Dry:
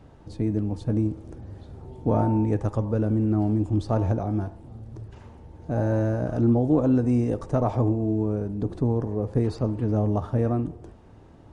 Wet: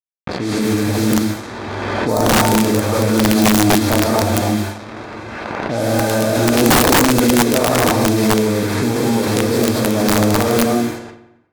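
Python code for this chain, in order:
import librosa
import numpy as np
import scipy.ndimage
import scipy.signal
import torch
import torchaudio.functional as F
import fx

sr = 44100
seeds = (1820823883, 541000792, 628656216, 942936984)

y = fx.tracing_dist(x, sr, depth_ms=0.098)
y = fx.quant_dither(y, sr, seeds[0], bits=6, dither='none')
y = fx.highpass(y, sr, hz=390.0, slope=6)
y = fx.notch(y, sr, hz=2900.0, q=7.9)
y = fx.echo_feedback(y, sr, ms=90, feedback_pct=58, wet_db=-14.0)
y = fx.rev_gated(y, sr, seeds[1], gate_ms=270, shape='rising', drr_db=-5.0)
y = fx.env_lowpass(y, sr, base_hz=1900.0, full_db=-23.0)
y = (np.mod(10.0 ** (13.5 / 20.0) * y + 1.0, 2.0) - 1.0) / 10.0 ** (13.5 / 20.0)
y = fx.spec_repair(y, sr, seeds[2], start_s=1.92, length_s=0.27, low_hz=1300.0, high_hz=3600.0, source='before')
y = fx.pre_swell(y, sr, db_per_s=22.0)
y = F.gain(torch.from_numpy(y), 7.0).numpy()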